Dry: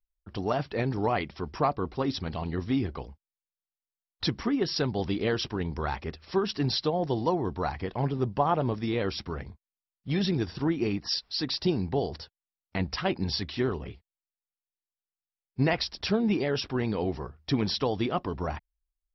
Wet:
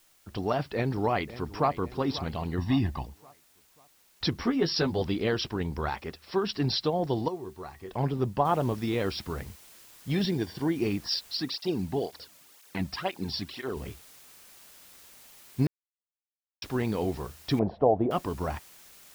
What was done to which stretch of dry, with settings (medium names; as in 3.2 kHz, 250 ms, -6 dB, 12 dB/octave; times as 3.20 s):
0.73–1.73 s: echo throw 540 ms, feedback 45%, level -15.5 dB
2.58–3.06 s: comb 1.1 ms, depth 88%
4.31–5.02 s: doubling 12 ms -3 dB
5.89–6.44 s: bass shelf 130 Hz -10 dB
7.28–7.91 s: feedback comb 380 Hz, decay 0.16 s, harmonics odd, mix 80%
8.45 s: noise floor step -63 dB -53 dB
10.25–10.76 s: comb of notches 1.3 kHz
11.37–13.77 s: cancelling through-zero flanger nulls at 2 Hz, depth 2.7 ms
15.67–16.62 s: mute
17.59–18.11 s: resonant low-pass 670 Hz, resonance Q 5